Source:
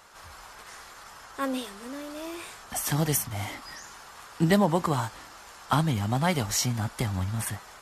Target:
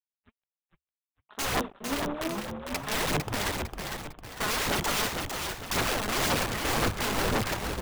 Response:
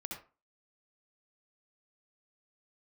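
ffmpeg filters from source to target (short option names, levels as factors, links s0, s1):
-filter_complex "[0:a]bandreject=f=50:t=h:w=6,bandreject=f=100:t=h:w=6,bandreject=f=150:t=h:w=6,bandreject=f=200:t=h:w=6,bandreject=f=250:t=h:w=6,bandreject=f=300:t=h:w=6,bandreject=f=350:t=h:w=6,bandreject=f=400:t=h:w=6,bandreject=f=450:t=h:w=6,afwtdn=0.0126,acrossover=split=780|2600[s0][s1][s2];[s2]acompressor=threshold=0.00224:ratio=6[s3];[s0][s1][s3]amix=inputs=3:normalize=0,alimiter=limit=0.0891:level=0:latency=1:release=58,aresample=8000,aeval=exprs='sgn(val(0))*max(abs(val(0))-0.00376,0)':c=same,aresample=44100,asplit=2[s4][s5];[s5]asetrate=33038,aresample=44100,atempo=1.33484,volume=0.282[s6];[s4][s6]amix=inputs=2:normalize=0,aeval=exprs='(mod(37.6*val(0)+1,2)-1)/37.6':c=same,aphaser=in_gain=1:out_gain=1:delay=4.8:decay=0.49:speed=1.9:type=sinusoidal,asplit=6[s7][s8][s9][s10][s11][s12];[s8]adelay=453,afreqshift=-71,volume=0.562[s13];[s9]adelay=906,afreqshift=-142,volume=0.237[s14];[s10]adelay=1359,afreqshift=-213,volume=0.0989[s15];[s11]adelay=1812,afreqshift=-284,volume=0.0417[s16];[s12]adelay=2265,afreqshift=-355,volume=0.0176[s17];[s7][s13][s14][s15][s16][s17]amix=inputs=6:normalize=0,volume=2.11"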